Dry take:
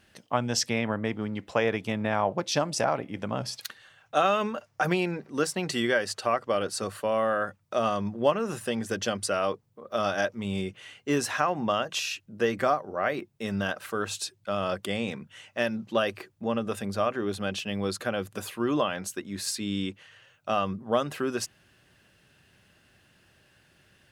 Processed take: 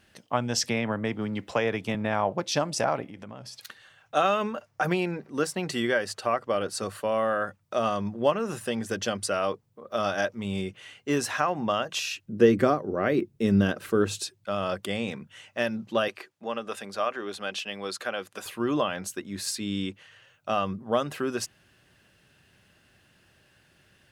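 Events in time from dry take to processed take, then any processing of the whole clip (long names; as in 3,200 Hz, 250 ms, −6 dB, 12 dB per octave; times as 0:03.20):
0:00.63–0:01.95: multiband upward and downward compressor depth 40%
0:03.06–0:03.67: downward compressor 3 to 1, threshold −41 dBFS
0:04.34–0:06.75: parametric band 5,500 Hz −2.5 dB 2.2 octaves
0:12.29–0:14.23: low shelf with overshoot 520 Hz +8.5 dB, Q 1.5
0:16.08–0:18.46: meter weighting curve A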